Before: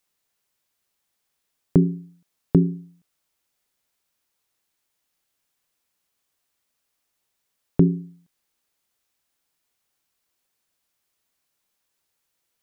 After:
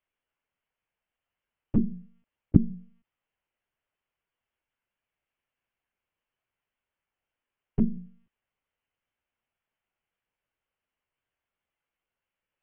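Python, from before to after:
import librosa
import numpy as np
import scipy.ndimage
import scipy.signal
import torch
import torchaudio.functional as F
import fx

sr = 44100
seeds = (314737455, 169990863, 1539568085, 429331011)

y = fx.lpc_monotone(x, sr, seeds[0], pitch_hz=230.0, order=16)
y = fx.formant_shift(y, sr, semitones=-3)
y = F.gain(torch.from_numpy(y), -6.0).numpy()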